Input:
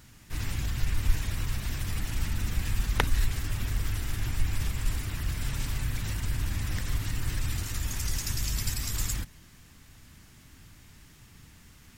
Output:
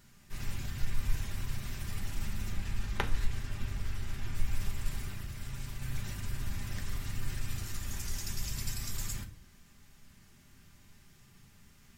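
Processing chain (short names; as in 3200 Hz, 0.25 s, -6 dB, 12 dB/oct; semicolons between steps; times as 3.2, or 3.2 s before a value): 2.52–4.35 high shelf 8300 Hz -10 dB; 5.09–5.82 compressor 3:1, threshold -31 dBFS, peak gain reduction 5.5 dB; reverb RT60 0.50 s, pre-delay 5 ms, DRR 3 dB; gain -8 dB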